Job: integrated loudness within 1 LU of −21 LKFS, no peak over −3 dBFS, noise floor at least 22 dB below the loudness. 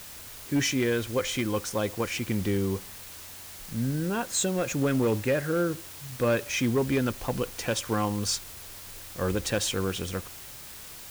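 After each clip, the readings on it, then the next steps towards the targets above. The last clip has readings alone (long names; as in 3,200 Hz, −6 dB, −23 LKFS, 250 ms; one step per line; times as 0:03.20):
share of clipped samples 0.6%; peaks flattened at −19.0 dBFS; background noise floor −44 dBFS; target noise floor −51 dBFS; integrated loudness −28.5 LKFS; sample peak −19.0 dBFS; target loudness −21.0 LKFS
→ clipped peaks rebuilt −19 dBFS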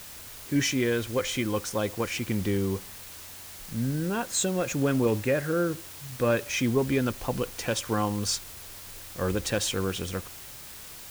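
share of clipped samples 0.0%; background noise floor −44 dBFS; target noise floor −50 dBFS
→ broadband denoise 6 dB, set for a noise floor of −44 dBFS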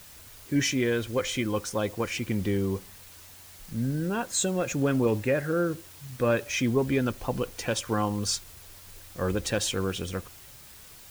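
background noise floor −49 dBFS; target noise floor −51 dBFS
→ broadband denoise 6 dB, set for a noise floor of −49 dBFS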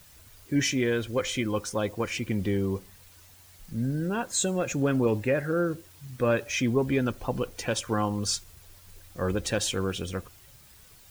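background noise floor −54 dBFS; integrated loudness −28.5 LKFS; sample peak −13.0 dBFS; target loudness −21.0 LKFS
→ level +7.5 dB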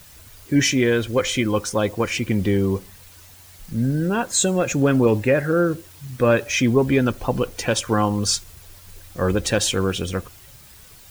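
integrated loudness −21.0 LKFS; sample peak −5.5 dBFS; background noise floor −46 dBFS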